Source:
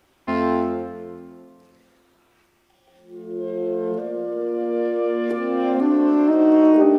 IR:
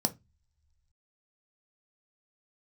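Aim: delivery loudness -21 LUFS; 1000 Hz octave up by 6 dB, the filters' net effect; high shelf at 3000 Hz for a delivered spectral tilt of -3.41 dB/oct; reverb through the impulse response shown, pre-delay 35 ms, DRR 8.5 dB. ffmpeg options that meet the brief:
-filter_complex "[0:a]equalizer=f=1k:t=o:g=8.5,highshelf=f=3k:g=-8.5,asplit=2[a][b];[1:a]atrim=start_sample=2205,adelay=35[c];[b][c]afir=irnorm=-1:irlink=0,volume=-14dB[d];[a][d]amix=inputs=2:normalize=0,volume=-4.5dB"

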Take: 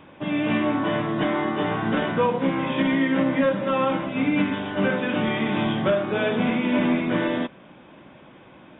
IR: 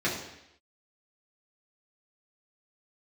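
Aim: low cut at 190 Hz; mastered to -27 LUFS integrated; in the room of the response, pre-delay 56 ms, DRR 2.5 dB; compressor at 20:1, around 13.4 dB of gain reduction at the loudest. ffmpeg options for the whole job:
-filter_complex "[0:a]highpass=190,acompressor=threshold=-31dB:ratio=20,asplit=2[a][b];[1:a]atrim=start_sample=2205,adelay=56[c];[b][c]afir=irnorm=-1:irlink=0,volume=-13.5dB[d];[a][d]amix=inputs=2:normalize=0,volume=5.5dB"

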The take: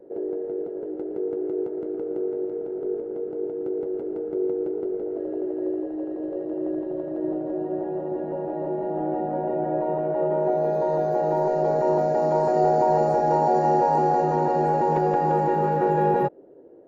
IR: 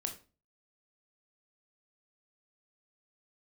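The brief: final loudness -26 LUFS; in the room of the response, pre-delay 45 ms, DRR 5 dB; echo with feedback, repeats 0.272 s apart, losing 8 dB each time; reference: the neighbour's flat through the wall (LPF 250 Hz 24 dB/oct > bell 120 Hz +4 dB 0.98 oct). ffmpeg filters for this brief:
-filter_complex "[0:a]aecho=1:1:272|544|816|1088|1360:0.398|0.159|0.0637|0.0255|0.0102,asplit=2[a][b];[1:a]atrim=start_sample=2205,adelay=45[c];[b][c]afir=irnorm=-1:irlink=0,volume=-5dB[d];[a][d]amix=inputs=2:normalize=0,lowpass=f=250:w=0.5412,lowpass=f=250:w=1.3066,equalizer=f=120:t=o:w=0.98:g=4,volume=8dB"

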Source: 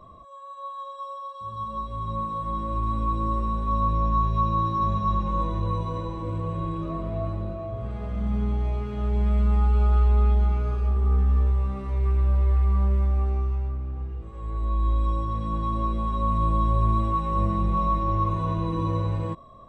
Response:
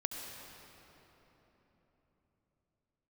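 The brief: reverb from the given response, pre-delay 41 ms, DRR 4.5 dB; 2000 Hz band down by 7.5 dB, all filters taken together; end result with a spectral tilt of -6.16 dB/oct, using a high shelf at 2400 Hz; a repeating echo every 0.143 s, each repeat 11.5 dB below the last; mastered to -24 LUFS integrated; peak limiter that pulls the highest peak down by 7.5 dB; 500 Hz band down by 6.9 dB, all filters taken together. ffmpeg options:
-filter_complex "[0:a]equalizer=f=500:t=o:g=-8.5,equalizer=f=2k:t=o:g=-6.5,highshelf=f=2.4k:g=-6.5,alimiter=limit=-20.5dB:level=0:latency=1,aecho=1:1:143|286|429:0.266|0.0718|0.0194,asplit=2[a][b];[1:a]atrim=start_sample=2205,adelay=41[c];[b][c]afir=irnorm=-1:irlink=0,volume=-6dB[d];[a][d]amix=inputs=2:normalize=0,volume=4.5dB"

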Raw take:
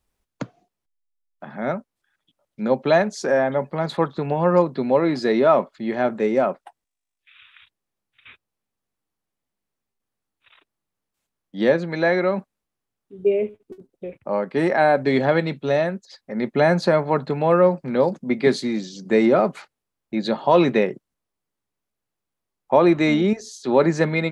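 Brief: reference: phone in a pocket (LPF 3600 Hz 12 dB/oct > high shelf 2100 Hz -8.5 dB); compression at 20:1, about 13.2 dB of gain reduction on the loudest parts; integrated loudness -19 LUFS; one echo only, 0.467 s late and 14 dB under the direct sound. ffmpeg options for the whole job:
-af "acompressor=threshold=-24dB:ratio=20,lowpass=3.6k,highshelf=f=2.1k:g=-8.5,aecho=1:1:467:0.2,volume=12dB"

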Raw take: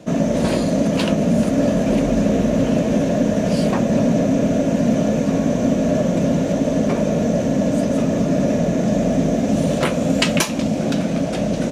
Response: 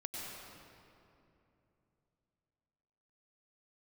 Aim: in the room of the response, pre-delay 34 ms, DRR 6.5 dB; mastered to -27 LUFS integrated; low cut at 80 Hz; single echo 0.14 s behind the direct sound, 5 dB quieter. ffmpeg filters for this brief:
-filter_complex "[0:a]highpass=80,aecho=1:1:140:0.562,asplit=2[a][b];[1:a]atrim=start_sample=2205,adelay=34[c];[b][c]afir=irnorm=-1:irlink=0,volume=-7dB[d];[a][d]amix=inputs=2:normalize=0,volume=-11dB"

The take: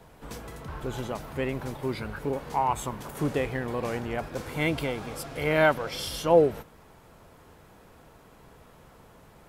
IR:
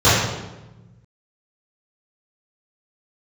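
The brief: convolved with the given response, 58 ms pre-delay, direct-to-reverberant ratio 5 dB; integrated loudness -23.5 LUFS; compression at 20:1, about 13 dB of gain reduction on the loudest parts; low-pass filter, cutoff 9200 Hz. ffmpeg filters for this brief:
-filter_complex "[0:a]lowpass=9.2k,acompressor=threshold=-26dB:ratio=20,asplit=2[a][b];[1:a]atrim=start_sample=2205,adelay=58[c];[b][c]afir=irnorm=-1:irlink=0,volume=-31.5dB[d];[a][d]amix=inputs=2:normalize=0,volume=7.5dB"

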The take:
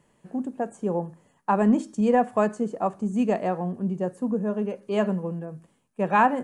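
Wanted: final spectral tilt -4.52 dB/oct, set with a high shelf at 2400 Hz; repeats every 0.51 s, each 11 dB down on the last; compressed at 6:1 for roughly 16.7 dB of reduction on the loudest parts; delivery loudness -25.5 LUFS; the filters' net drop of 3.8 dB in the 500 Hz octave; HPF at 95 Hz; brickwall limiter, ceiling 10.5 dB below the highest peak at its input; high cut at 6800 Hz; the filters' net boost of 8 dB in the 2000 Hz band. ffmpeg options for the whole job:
-af "highpass=95,lowpass=6.8k,equalizer=f=500:t=o:g=-5.5,equalizer=f=2k:t=o:g=9,highshelf=f=2.4k:g=4.5,acompressor=threshold=-31dB:ratio=6,alimiter=level_in=4.5dB:limit=-24dB:level=0:latency=1,volume=-4.5dB,aecho=1:1:510|1020|1530:0.282|0.0789|0.0221,volume=12.5dB"

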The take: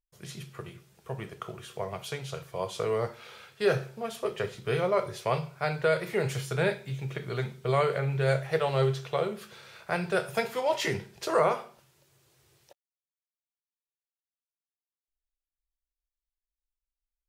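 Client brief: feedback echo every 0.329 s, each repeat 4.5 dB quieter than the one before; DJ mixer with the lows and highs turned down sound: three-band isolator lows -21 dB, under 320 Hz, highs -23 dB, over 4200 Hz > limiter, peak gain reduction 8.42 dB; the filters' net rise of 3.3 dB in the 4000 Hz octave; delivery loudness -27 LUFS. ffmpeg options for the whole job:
-filter_complex "[0:a]acrossover=split=320 4200:gain=0.0891 1 0.0708[a][b][c];[a][b][c]amix=inputs=3:normalize=0,equalizer=f=4k:t=o:g=8.5,aecho=1:1:329|658|987|1316|1645|1974|2303|2632|2961:0.596|0.357|0.214|0.129|0.0772|0.0463|0.0278|0.0167|0.01,volume=5.5dB,alimiter=limit=-16dB:level=0:latency=1"

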